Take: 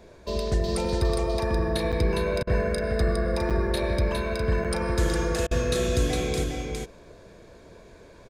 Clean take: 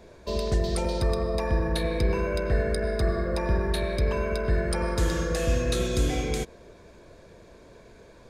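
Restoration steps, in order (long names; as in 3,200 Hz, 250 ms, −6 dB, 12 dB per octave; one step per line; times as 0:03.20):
repair the gap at 0:01.92/0:03.50/0:04.64, 6.9 ms
repair the gap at 0:02.43/0:05.47, 40 ms
echo removal 409 ms −4 dB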